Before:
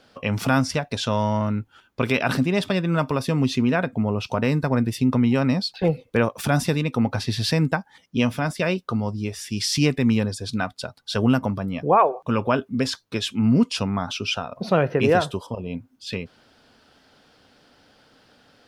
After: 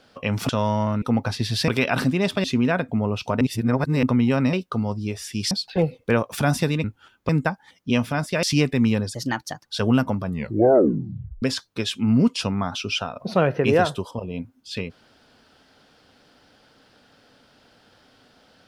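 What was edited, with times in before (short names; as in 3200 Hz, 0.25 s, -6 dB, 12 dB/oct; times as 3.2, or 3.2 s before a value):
0.49–1.03 cut
1.56–2.01 swap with 6.9–7.56
2.77–3.48 cut
4.45–5.07 reverse
8.7–9.68 move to 5.57
10.39–11.01 speed 121%
11.59 tape stop 1.19 s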